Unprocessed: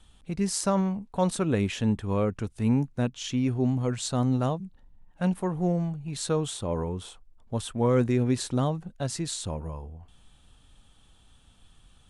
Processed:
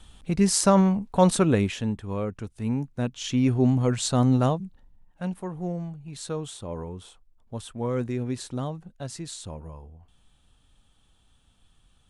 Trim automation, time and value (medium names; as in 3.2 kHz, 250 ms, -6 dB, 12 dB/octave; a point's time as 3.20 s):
1.41 s +6.5 dB
1.92 s -3.5 dB
2.80 s -3.5 dB
3.45 s +4.5 dB
4.46 s +4.5 dB
5.27 s -5 dB